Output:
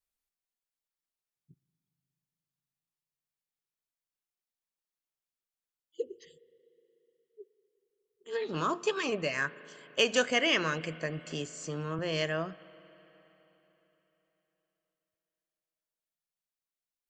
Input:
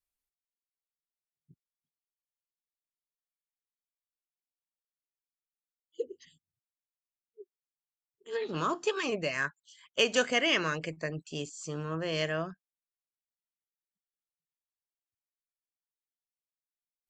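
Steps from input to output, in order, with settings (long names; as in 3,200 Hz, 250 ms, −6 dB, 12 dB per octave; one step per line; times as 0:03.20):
spring reverb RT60 3.8 s, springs 37/60 ms, chirp 75 ms, DRR 18 dB
0:11.26–0:11.99: multiband upward and downward compressor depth 40%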